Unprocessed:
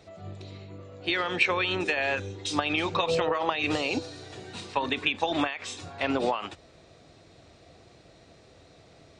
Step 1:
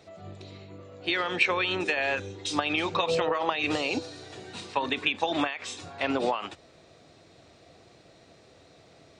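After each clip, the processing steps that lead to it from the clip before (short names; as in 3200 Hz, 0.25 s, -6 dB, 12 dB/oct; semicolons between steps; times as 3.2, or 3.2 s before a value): HPF 120 Hz 6 dB/oct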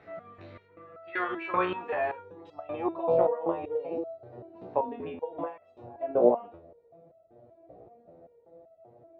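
low-pass sweep 1700 Hz -> 620 Hz, 0.65–3.42; stepped resonator 5.2 Hz 60–660 Hz; gain +7.5 dB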